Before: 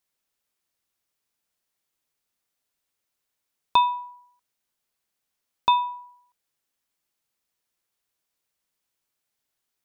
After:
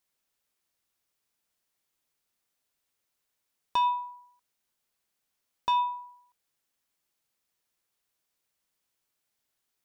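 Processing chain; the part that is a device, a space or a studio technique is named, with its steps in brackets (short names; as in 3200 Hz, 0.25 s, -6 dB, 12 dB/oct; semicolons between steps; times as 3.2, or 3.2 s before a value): soft clipper into limiter (soft clip -11.5 dBFS, distortion -19 dB; limiter -19.5 dBFS, peak gain reduction 7 dB)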